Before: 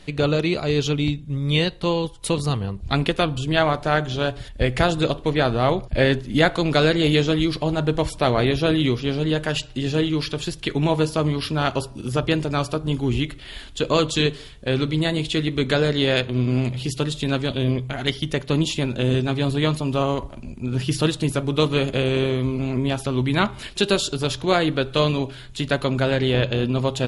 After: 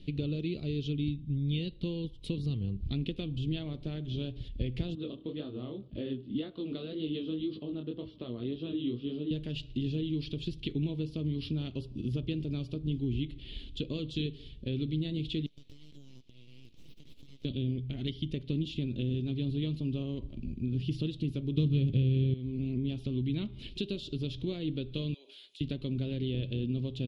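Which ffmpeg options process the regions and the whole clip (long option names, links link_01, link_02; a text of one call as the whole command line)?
ffmpeg -i in.wav -filter_complex "[0:a]asettb=1/sr,asplit=3[link_01][link_02][link_03];[link_01]atrim=end=4.954[link_04];[link_02]atrim=start=4.95:end=9.31,asetpts=PTS-STARTPTS,afade=type=in:duration=0.004:curve=qsin,afade=type=out:start_time=4.356:duration=0.004:curve=qsin,highpass=150,equalizer=frequency=150:width_type=q:width=4:gain=-9,equalizer=frequency=1200:width_type=q:width=4:gain=8,equalizer=frequency=2300:width_type=q:width=4:gain=-10,lowpass=frequency=3700:width=0.5412,lowpass=frequency=3700:width=1.3066,flanger=delay=19:depth=6.8:speed=1.9[link_05];[link_03]atrim=start=9.306[link_06];[link_04][link_05]acrossfade=duration=0.004:curve1=hsin:curve2=qsin[link_07];[link_07][link_06]acrossfade=duration=0.004:curve1=qsin:curve2=hsin,asettb=1/sr,asplit=3[link_08][link_09][link_10];[link_08]atrim=end=15.464[link_11];[link_09]atrim=start=15.46:end=17.45,asetpts=PTS-STARTPTS,afade=type=in:duration=0.004:curve=qsin,afade=type=out:start_time=1.986:duration=0.004:curve=qsin,aderivative,aeval=exprs='abs(val(0))':channel_layout=same,acompressor=threshold=-39dB:ratio=16:attack=3.2:release=140:knee=1:detection=peak[link_12];[link_10]atrim=start=17.446[link_13];[link_11][link_12]acrossfade=duration=0.004:curve1=hsin:curve2=qsin[link_14];[link_14][link_13]acrossfade=duration=0.004:curve1=qsin:curve2=hsin,asettb=1/sr,asplit=3[link_15][link_16][link_17];[link_15]atrim=end=21.574[link_18];[link_16]atrim=start=21.57:end=22.34,asetpts=PTS-STARTPTS,afade=type=in:duration=0.004:curve=qsin,afade=type=out:start_time=0.766:duration=0.004:curve=qsin,acontrast=70,equalizer=frequency=120:width_type=o:width=1.4:gain=13[link_19];[link_17]atrim=start=22.336[link_20];[link_18][link_19]acrossfade=duration=0.004:curve1=hsin:curve2=qsin[link_21];[link_21][link_20]acrossfade=duration=0.004:curve1=qsin:curve2=hsin,asettb=1/sr,asplit=3[link_22][link_23][link_24];[link_22]atrim=end=25.144[link_25];[link_23]atrim=start=25.14:end=25.61,asetpts=PTS-STARTPTS,afade=type=in:duration=0.004:curve=qsin,afade=type=out:start_time=0.466:duration=0.004:curve=qsin,highpass=frequency=530:width=0.5412,highpass=frequency=530:width=1.3066,aemphasis=mode=production:type=50fm,acompressor=threshold=-37dB:ratio=6:attack=3.2:release=140:knee=1:detection=peak[link_26];[link_24]atrim=start=25.606[link_27];[link_25][link_26]acrossfade=duration=0.004:curve1=hsin:curve2=qsin[link_28];[link_28][link_27]acrossfade=duration=0.004:curve1=qsin:curve2=hsin,equalizer=frequency=2800:width=6.4:gain=-5,acompressor=threshold=-28dB:ratio=3,firequalizer=gain_entry='entry(290,0);entry(760,-24);entry(1600,-26);entry(2800,-2);entry(7300,-25)':delay=0.05:min_phase=1,volume=-2dB" out.wav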